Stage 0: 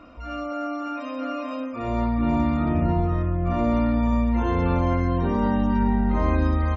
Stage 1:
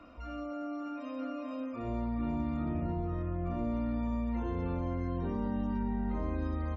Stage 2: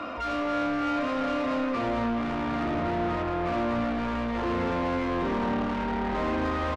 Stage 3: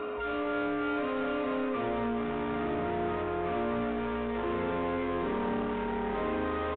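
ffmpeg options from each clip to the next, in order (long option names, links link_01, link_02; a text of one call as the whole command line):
ffmpeg -i in.wav -filter_complex "[0:a]acrossover=split=250|530[link_01][link_02][link_03];[link_01]acompressor=threshold=-27dB:ratio=4[link_04];[link_02]acompressor=threshold=-32dB:ratio=4[link_05];[link_03]acompressor=threshold=-40dB:ratio=4[link_06];[link_04][link_05][link_06]amix=inputs=3:normalize=0,volume=-6.5dB" out.wav
ffmpeg -i in.wav -filter_complex "[0:a]asplit=2[link_01][link_02];[link_02]highpass=frequency=720:poles=1,volume=29dB,asoftclip=type=tanh:threshold=-22.5dB[link_03];[link_01][link_03]amix=inputs=2:normalize=0,lowpass=frequency=2300:poles=1,volume=-6dB,asplit=2[link_04][link_05];[link_05]asoftclip=type=tanh:threshold=-37dB,volume=-7dB[link_06];[link_04][link_06]amix=inputs=2:normalize=0,aecho=1:1:268:0.335" out.wav
ffmpeg -i in.wav -filter_complex "[0:a]aeval=exprs='val(0)+0.0316*sin(2*PI*420*n/s)':channel_layout=same,acrossover=split=140[link_01][link_02];[link_01]asoftclip=type=tanh:threshold=-37dB[link_03];[link_03][link_02]amix=inputs=2:normalize=0,aresample=8000,aresample=44100,volume=-4.5dB" out.wav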